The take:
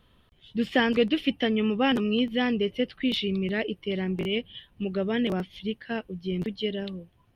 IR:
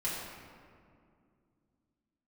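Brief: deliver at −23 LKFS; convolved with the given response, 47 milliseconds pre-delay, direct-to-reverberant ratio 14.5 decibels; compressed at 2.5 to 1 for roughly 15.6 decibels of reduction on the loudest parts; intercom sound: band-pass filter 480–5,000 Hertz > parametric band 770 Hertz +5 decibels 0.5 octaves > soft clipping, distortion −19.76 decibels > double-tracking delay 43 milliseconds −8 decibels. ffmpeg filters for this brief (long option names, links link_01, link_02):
-filter_complex "[0:a]acompressor=threshold=-43dB:ratio=2.5,asplit=2[link_01][link_02];[1:a]atrim=start_sample=2205,adelay=47[link_03];[link_02][link_03]afir=irnorm=-1:irlink=0,volume=-19.5dB[link_04];[link_01][link_04]amix=inputs=2:normalize=0,highpass=480,lowpass=5000,equalizer=frequency=770:width_type=o:width=0.5:gain=5,asoftclip=threshold=-31dB,asplit=2[link_05][link_06];[link_06]adelay=43,volume=-8dB[link_07];[link_05][link_07]amix=inputs=2:normalize=0,volume=22dB"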